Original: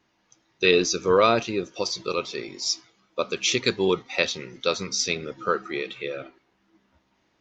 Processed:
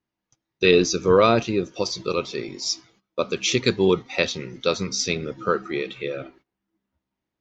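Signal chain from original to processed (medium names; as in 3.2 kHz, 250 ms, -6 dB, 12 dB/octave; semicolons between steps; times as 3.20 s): gate -55 dBFS, range -19 dB; bass shelf 330 Hz +8.5 dB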